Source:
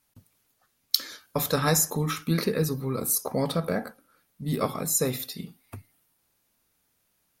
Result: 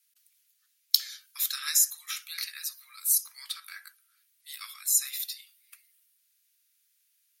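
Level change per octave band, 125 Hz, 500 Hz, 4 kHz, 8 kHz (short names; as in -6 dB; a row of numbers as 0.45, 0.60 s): under -40 dB, under -40 dB, +1.0 dB, +1.5 dB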